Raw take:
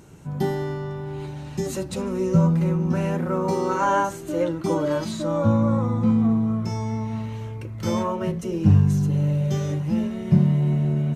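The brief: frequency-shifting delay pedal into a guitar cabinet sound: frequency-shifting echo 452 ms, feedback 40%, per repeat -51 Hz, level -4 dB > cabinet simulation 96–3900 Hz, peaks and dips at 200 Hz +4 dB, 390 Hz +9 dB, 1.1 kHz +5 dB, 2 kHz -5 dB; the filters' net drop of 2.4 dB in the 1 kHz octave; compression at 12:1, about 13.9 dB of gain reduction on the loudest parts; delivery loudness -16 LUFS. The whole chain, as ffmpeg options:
-filter_complex "[0:a]equalizer=f=1000:t=o:g=-5.5,acompressor=threshold=0.0562:ratio=12,asplit=6[s0][s1][s2][s3][s4][s5];[s1]adelay=452,afreqshift=-51,volume=0.631[s6];[s2]adelay=904,afreqshift=-102,volume=0.251[s7];[s3]adelay=1356,afreqshift=-153,volume=0.101[s8];[s4]adelay=1808,afreqshift=-204,volume=0.0403[s9];[s5]adelay=2260,afreqshift=-255,volume=0.0162[s10];[s0][s6][s7][s8][s9][s10]amix=inputs=6:normalize=0,highpass=96,equalizer=f=200:t=q:w=4:g=4,equalizer=f=390:t=q:w=4:g=9,equalizer=f=1100:t=q:w=4:g=5,equalizer=f=2000:t=q:w=4:g=-5,lowpass=f=3900:w=0.5412,lowpass=f=3900:w=1.3066,volume=3.35"

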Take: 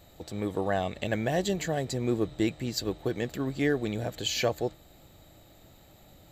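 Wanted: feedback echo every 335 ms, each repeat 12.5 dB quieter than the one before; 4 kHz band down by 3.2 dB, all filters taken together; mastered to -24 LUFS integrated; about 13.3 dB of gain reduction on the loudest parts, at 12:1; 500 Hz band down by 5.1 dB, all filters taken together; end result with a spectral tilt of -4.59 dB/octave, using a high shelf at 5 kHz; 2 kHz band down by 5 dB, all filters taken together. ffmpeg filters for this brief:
-af "equalizer=f=500:t=o:g=-6.5,equalizer=f=2000:t=o:g=-5.5,equalizer=f=4000:t=o:g=-4.5,highshelf=f=5000:g=5,acompressor=threshold=0.0126:ratio=12,aecho=1:1:335|670|1005:0.237|0.0569|0.0137,volume=8.91"

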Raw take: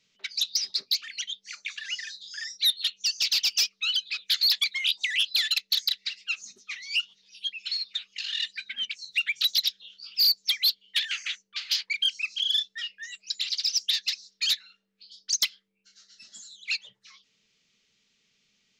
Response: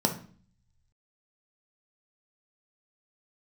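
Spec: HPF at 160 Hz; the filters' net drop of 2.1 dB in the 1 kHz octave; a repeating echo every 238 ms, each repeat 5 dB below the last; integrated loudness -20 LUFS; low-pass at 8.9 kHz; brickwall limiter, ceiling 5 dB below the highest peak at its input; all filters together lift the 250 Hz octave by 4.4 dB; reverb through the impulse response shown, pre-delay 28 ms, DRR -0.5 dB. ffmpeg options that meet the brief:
-filter_complex "[0:a]highpass=160,lowpass=8900,equalizer=f=250:t=o:g=7,equalizer=f=1000:t=o:g=-3.5,alimiter=limit=0.0841:level=0:latency=1,aecho=1:1:238|476|714|952|1190|1428|1666:0.562|0.315|0.176|0.0988|0.0553|0.031|0.0173,asplit=2[s0][s1];[1:a]atrim=start_sample=2205,adelay=28[s2];[s1][s2]afir=irnorm=-1:irlink=0,volume=0.335[s3];[s0][s3]amix=inputs=2:normalize=0,volume=2.11"

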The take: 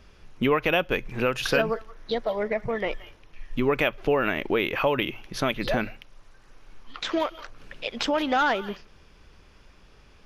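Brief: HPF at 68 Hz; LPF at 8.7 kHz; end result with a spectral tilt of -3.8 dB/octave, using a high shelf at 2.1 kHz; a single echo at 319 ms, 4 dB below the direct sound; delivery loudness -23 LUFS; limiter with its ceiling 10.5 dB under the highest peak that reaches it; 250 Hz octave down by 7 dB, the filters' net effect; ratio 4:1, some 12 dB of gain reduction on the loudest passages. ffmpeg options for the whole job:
-af "highpass=68,lowpass=8700,equalizer=f=250:t=o:g=-9,highshelf=f=2100:g=3.5,acompressor=threshold=0.0224:ratio=4,alimiter=level_in=1.58:limit=0.0631:level=0:latency=1,volume=0.631,aecho=1:1:319:0.631,volume=5.96"

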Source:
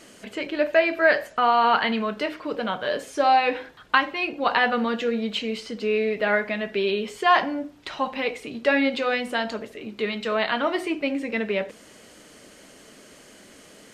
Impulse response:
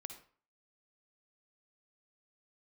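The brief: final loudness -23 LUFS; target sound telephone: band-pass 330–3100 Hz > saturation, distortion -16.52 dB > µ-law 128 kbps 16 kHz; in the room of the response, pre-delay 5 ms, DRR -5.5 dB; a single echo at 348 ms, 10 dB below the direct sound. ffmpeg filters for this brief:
-filter_complex "[0:a]aecho=1:1:348:0.316,asplit=2[s0][s1];[1:a]atrim=start_sample=2205,adelay=5[s2];[s1][s2]afir=irnorm=-1:irlink=0,volume=2.99[s3];[s0][s3]amix=inputs=2:normalize=0,highpass=330,lowpass=3100,asoftclip=threshold=0.473,volume=0.631" -ar 16000 -c:a pcm_mulaw

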